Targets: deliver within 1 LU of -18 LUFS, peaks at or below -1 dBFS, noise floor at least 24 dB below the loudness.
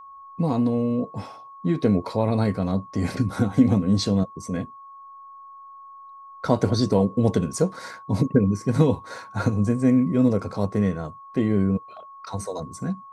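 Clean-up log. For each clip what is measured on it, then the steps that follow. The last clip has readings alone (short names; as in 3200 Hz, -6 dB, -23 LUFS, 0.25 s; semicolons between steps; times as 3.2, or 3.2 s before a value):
steady tone 1100 Hz; tone level -41 dBFS; loudness -23.5 LUFS; peak -4.5 dBFS; loudness target -18.0 LUFS
-> notch 1100 Hz, Q 30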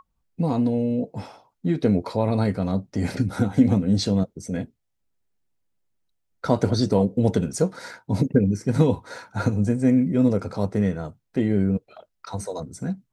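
steady tone none; loudness -23.5 LUFS; peak -4.5 dBFS; loudness target -18.0 LUFS
-> gain +5.5 dB; limiter -1 dBFS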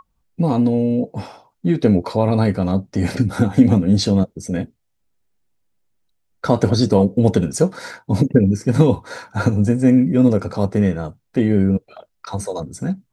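loudness -18.0 LUFS; peak -1.0 dBFS; noise floor -70 dBFS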